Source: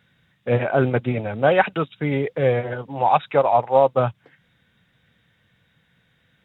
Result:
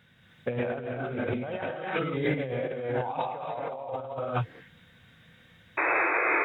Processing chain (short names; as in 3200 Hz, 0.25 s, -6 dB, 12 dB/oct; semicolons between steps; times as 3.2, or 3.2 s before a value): painted sound noise, 5.77–6.14, 290–2600 Hz -27 dBFS; non-linear reverb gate 0.35 s rising, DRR -3.5 dB; negative-ratio compressor -25 dBFS, ratio -1; gain -6.5 dB